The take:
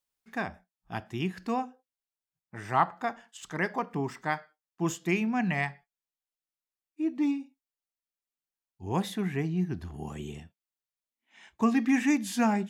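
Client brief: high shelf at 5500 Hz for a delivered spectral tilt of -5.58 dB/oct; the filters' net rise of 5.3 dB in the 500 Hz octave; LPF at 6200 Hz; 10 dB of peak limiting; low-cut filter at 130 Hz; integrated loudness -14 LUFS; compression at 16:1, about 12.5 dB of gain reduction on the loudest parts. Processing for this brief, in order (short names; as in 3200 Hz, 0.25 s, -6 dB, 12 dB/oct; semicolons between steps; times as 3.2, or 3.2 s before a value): HPF 130 Hz; LPF 6200 Hz; bell 500 Hz +7.5 dB; high shelf 5500 Hz -4.5 dB; compressor 16:1, threshold -30 dBFS; gain +25.5 dB; limiter -2.5 dBFS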